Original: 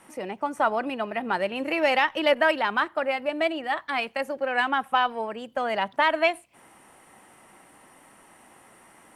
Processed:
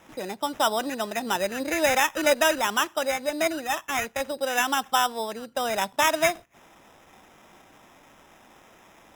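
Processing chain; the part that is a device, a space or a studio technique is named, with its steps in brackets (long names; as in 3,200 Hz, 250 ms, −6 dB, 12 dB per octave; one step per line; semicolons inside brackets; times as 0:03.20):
crushed at another speed (tape speed factor 0.5×; decimation without filtering 20×; tape speed factor 2×)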